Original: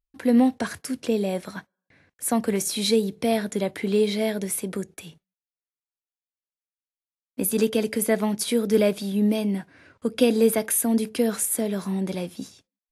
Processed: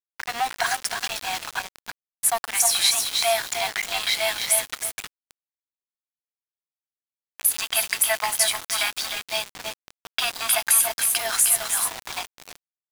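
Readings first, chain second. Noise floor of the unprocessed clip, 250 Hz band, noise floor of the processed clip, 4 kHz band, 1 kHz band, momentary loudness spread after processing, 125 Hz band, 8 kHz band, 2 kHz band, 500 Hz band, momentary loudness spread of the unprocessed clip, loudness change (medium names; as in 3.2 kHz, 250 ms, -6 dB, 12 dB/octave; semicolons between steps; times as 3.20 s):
under -85 dBFS, -28.5 dB, under -85 dBFS, +9.5 dB, +6.5 dB, 15 LU, under -15 dB, +8.5 dB, +9.0 dB, -9.0 dB, 12 LU, +2.0 dB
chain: in parallel at -6 dB: sine folder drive 4 dB, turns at -7 dBFS; on the sum: brick-wall FIR high-pass 660 Hz; treble shelf 2.8 kHz +4.5 dB; compression 2:1, threshold -24 dBFS, peak gain reduction 8.5 dB; on a send: multi-tap echo 309/326/623 ms -6/-9/-14 dB; on the sum: level-controlled noise filter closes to 1.8 kHz, open at -20.5 dBFS; small samples zeroed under -29.5 dBFS; trim +3 dB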